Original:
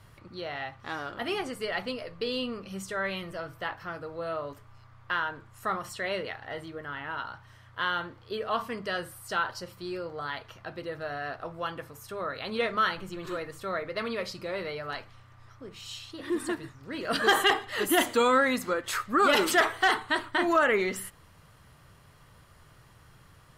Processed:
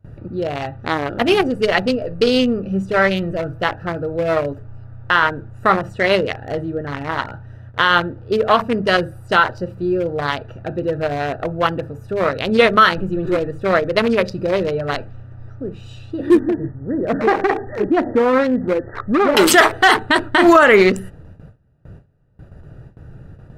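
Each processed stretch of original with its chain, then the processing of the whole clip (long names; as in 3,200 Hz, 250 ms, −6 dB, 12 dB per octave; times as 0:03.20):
0:16.39–0:19.37: parametric band 1,500 Hz −5.5 dB 0.46 octaves + downward compressor 2 to 1, threshold −33 dBFS + linear-phase brick-wall low-pass 2,000 Hz
whole clip: adaptive Wiener filter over 41 samples; noise gate with hold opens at −49 dBFS; boost into a limiter +20 dB; level −1 dB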